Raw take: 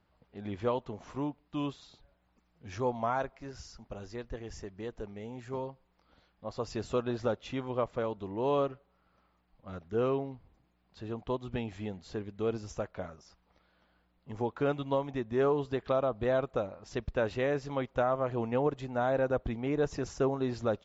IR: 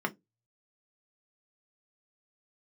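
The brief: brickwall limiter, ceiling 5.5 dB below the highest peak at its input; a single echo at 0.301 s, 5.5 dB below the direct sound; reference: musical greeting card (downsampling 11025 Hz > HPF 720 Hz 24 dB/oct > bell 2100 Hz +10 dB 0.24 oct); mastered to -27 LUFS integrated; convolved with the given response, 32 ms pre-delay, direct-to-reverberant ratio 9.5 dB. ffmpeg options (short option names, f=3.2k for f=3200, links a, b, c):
-filter_complex "[0:a]alimiter=limit=-24dB:level=0:latency=1,aecho=1:1:301:0.531,asplit=2[a][b];[1:a]atrim=start_sample=2205,adelay=32[c];[b][c]afir=irnorm=-1:irlink=0,volume=-16.5dB[d];[a][d]amix=inputs=2:normalize=0,aresample=11025,aresample=44100,highpass=f=720:w=0.5412,highpass=f=720:w=1.3066,equalizer=f=2.1k:t=o:w=0.24:g=10,volume=15dB"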